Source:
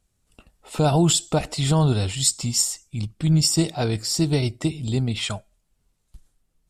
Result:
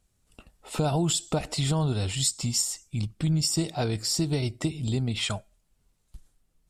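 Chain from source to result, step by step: compression 2.5:1, threshold -25 dBFS, peak gain reduction 8 dB

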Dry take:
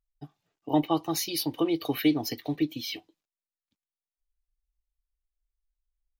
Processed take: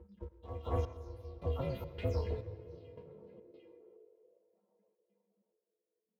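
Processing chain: delay that grows with frequency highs early, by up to 205 ms; in parallel at -2 dB: compression, threshold -32 dBFS, peak gain reduction 12 dB; on the sum: RIAA curve playback; chord resonator F#3 major, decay 0.28 s; pre-echo 228 ms -12 dB; waveshaping leveller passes 1; filtered feedback delay 749 ms, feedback 35%, low-pass 2.1 kHz, level -20.5 dB; trance gate "xx.xxx....x" 106 bpm -24 dB; on a send at -12 dB: reverberation RT60 3.6 s, pre-delay 90 ms; on the sum: ring modulator 200 Hz; high-pass sweep 62 Hz -> 680 Hz, 2.12–4.55 s; trim +2 dB

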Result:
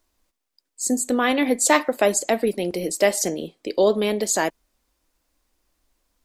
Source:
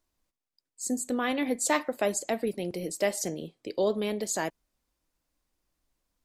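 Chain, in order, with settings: peaking EQ 130 Hz -13 dB 0.6 oct; trim +9 dB

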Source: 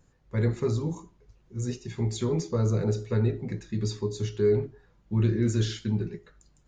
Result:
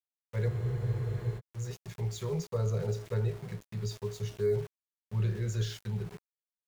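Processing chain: dynamic bell 320 Hz, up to +4 dB, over -39 dBFS, Q 1.3; Chebyshev band-stop 170–460 Hz, order 2; small samples zeroed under -40.5 dBFS; spectral freeze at 0.50 s, 0.87 s; trim -5 dB

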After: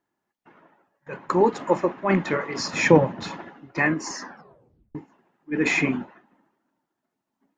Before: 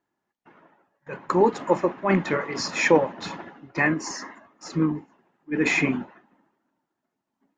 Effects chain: 2.73–3.23 s: peaking EQ 120 Hz +14.5 dB 1.6 oct; 4.21 s: tape stop 0.74 s

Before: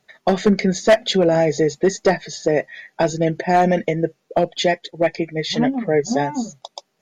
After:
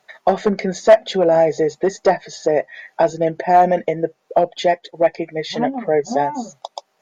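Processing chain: peaking EQ 770 Hz +12 dB 2.1 oct; tape noise reduction on one side only encoder only; trim -7.5 dB

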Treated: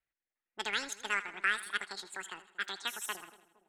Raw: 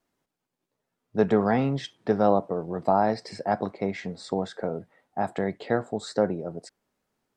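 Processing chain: transient shaper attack 0 dB, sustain -4 dB; ten-band graphic EQ 125 Hz -9 dB, 250 Hz -11 dB, 500 Hz -11 dB, 1 kHz +9 dB, 2 kHz +5 dB, 4 kHz +11 dB; level-controlled noise filter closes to 770 Hz, open at -26 dBFS; painted sound noise, 5.74–6.33 s, 2.6–6.7 kHz -39 dBFS; on a send: two-band feedback delay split 410 Hz, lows 463 ms, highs 159 ms, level -15 dB; on the sum: speed mistake 7.5 ips tape played at 15 ips; trim -8.5 dB

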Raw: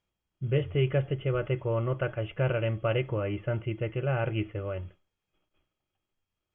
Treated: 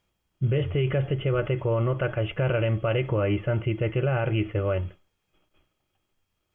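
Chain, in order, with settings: peak limiter -24.5 dBFS, peak gain reduction 9.5 dB; trim +8.5 dB

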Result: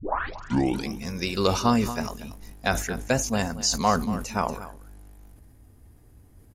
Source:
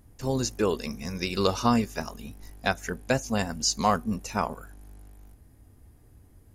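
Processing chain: tape start-up on the opening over 0.90 s; on a send: delay 234 ms -15 dB; on the sum: decay stretcher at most 80 dB/s; trim +1 dB

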